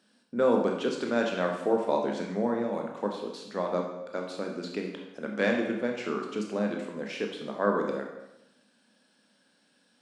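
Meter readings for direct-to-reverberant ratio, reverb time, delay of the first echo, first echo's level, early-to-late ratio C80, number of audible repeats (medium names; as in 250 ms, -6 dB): 1.0 dB, 0.90 s, no echo, no echo, 7.0 dB, no echo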